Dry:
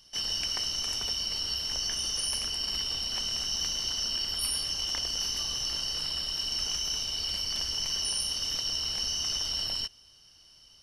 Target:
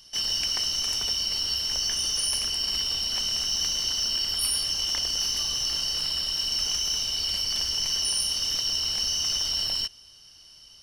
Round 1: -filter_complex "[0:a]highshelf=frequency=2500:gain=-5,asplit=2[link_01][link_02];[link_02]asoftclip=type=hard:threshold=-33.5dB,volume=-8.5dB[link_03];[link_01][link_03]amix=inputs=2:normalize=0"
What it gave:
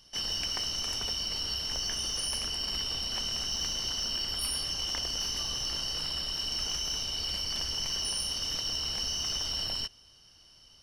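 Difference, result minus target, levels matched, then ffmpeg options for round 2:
2,000 Hz band +3.0 dB
-filter_complex "[0:a]highshelf=frequency=2500:gain=4,asplit=2[link_01][link_02];[link_02]asoftclip=type=hard:threshold=-33.5dB,volume=-8.5dB[link_03];[link_01][link_03]amix=inputs=2:normalize=0"

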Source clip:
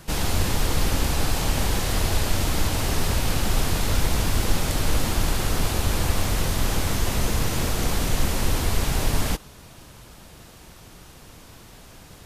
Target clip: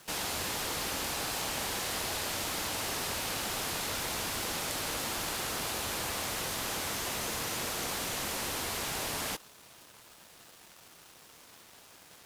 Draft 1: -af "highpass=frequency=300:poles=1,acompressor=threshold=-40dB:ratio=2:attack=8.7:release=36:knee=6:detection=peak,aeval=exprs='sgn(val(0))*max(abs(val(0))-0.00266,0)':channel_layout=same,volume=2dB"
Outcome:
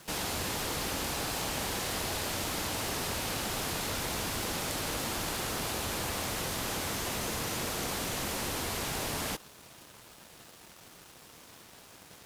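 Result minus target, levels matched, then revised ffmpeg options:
250 Hz band +4.0 dB
-af "highpass=frequency=620:poles=1,acompressor=threshold=-40dB:ratio=2:attack=8.7:release=36:knee=6:detection=peak,aeval=exprs='sgn(val(0))*max(abs(val(0))-0.00266,0)':channel_layout=same,volume=2dB"

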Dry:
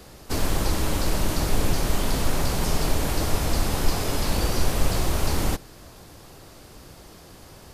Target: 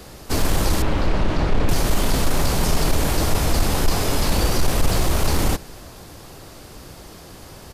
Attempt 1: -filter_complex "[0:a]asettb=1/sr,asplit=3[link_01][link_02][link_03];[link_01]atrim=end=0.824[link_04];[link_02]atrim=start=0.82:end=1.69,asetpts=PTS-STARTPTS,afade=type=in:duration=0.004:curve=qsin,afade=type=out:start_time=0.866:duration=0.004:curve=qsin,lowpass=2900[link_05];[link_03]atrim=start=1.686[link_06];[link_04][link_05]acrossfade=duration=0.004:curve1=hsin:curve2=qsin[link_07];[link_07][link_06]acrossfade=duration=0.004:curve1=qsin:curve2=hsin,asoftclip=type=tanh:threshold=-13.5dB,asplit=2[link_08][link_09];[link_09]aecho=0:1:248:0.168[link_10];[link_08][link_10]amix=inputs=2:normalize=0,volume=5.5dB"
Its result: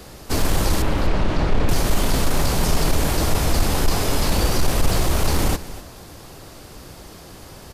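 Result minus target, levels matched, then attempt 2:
echo-to-direct +9 dB
-filter_complex "[0:a]asettb=1/sr,asplit=3[link_01][link_02][link_03];[link_01]atrim=end=0.824[link_04];[link_02]atrim=start=0.82:end=1.69,asetpts=PTS-STARTPTS,afade=type=in:duration=0.004:curve=qsin,afade=type=out:start_time=0.866:duration=0.004:curve=qsin,lowpass=2900[link_05];[link_03]atrim=start=1.686[link_06];[link_04][link_05]acrossfade=duration=0.004:curve1=hsin:curve2=qsin[link_07];[link_07][link_06]acrossfade=duration=0.004:curve1=qsin:curve2=hsin,asoftclip=type=tanh:threshold=-13.5dB,asplit=2[link_08][link_09];[link_09]aecho=0:1:248:0.0596[link_10];[link_08][link_10]amix=inputs=2:normalize=0,volume=5.5dB"

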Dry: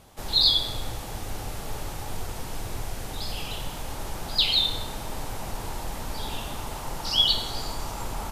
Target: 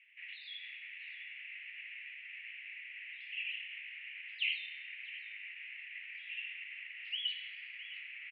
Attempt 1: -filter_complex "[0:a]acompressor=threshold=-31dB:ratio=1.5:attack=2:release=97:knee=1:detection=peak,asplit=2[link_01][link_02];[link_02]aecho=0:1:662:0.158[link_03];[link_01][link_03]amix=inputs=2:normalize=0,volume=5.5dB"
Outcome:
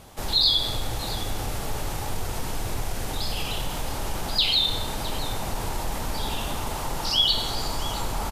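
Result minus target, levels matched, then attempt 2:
2,000 Hz band −13.5 dB
-filter_complex "[0:a]acompressor=threshold=-31dB:ratio=1.5:attack=2:release=97:knee=1:detection=peak,asuperpass=centerf=2300:order=8:qfactor=2.5,asplit=2[link_01][link_02];[link_02]aecho=0:1:662:0.158[link_03];[link_01][link_03]amix=inputs=2:normalize=0,volume=5.5dB"

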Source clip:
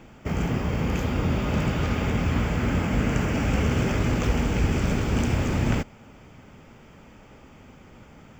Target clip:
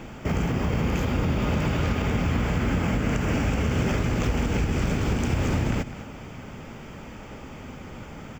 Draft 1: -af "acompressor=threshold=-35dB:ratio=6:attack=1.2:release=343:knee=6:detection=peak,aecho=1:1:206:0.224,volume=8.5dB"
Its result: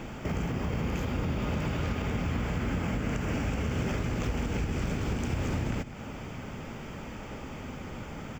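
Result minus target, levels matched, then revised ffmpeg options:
downward compressor: peak gain reduction +6 dB
-af "acompressor=threshold=-27.5dB:ratio=6:attack=1.2:release=343:knee=6:detection=peak,aecho=1:1:206:0.224,volume=8.5dB"

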